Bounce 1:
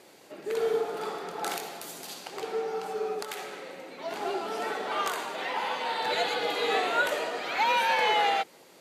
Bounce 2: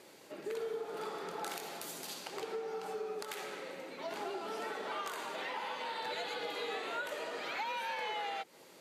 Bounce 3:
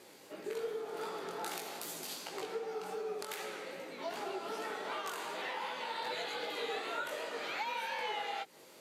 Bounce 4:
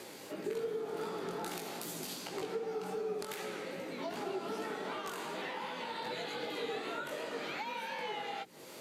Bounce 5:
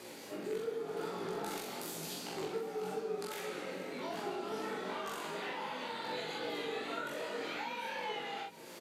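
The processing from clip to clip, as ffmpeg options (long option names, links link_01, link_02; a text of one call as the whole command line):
ffmpeg -i in.wav -af "bandreject=frequency=730:width=12,acompressor=threshold=-35dB:ratio=4,volume=-2.5dB" out.wav
ffmpeg -i in.wav -af "highshelf=frequency=5900:gain=-8,crystalizer=i=1.5:c=0,flanger=delay=16:depth=5.6:speed=2.6,volume=3dB" out.wav
ffmpeg -i in.wav -filter_complex "[0:a]acrossover=split=300[link_01][link_02];[link_02]acompressor=threshold=-59dB:ratio=2[link_03];[link_01][link_03]amix=inputs=2:normalize=0,volume=10dB" out.wav
ffmpeg -i in.wav -filter_complex "[0:a]flanger=delay=17:depth=4:speed=0.92,asplit=2[link_01][link_02];[link_02]adelay=44,volume=-3dB[link_03];[link_01][link_03]amix=inputs=2:normalize=0,aecho=1:1:747:0.106,volume=1dB" out.wav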